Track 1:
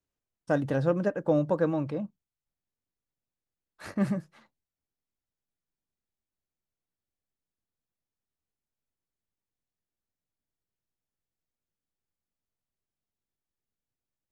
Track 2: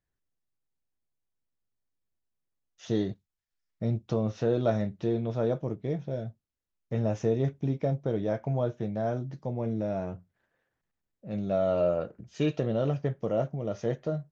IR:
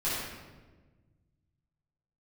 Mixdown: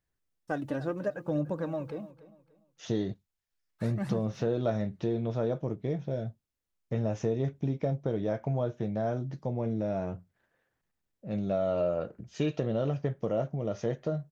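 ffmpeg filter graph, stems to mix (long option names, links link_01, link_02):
-filter_complex "[0:a]agate=range=-7dB:threshold=-57dB:ratio=16:detection=peak,acrusher=bits=11:mix=0:aa=0.000001,aphaser=in_gain=1:out_gain=1:delay=3.5:decay=0.52:speed=0.7:type=triangular,volume=-5dB,asplit=2[link_01][link_02];[link_02]volume=-17.5dB[link_03];[1:a]volume=1.5dB[link_04];[link_03]aecho=0:1:292|584|876|1168:1|0.3|0.09|0.027[link_05];[link_01][link_04][link_05]amix=inputs=3:normalize=0,acompressor=threshold=-28dB:ratio=2"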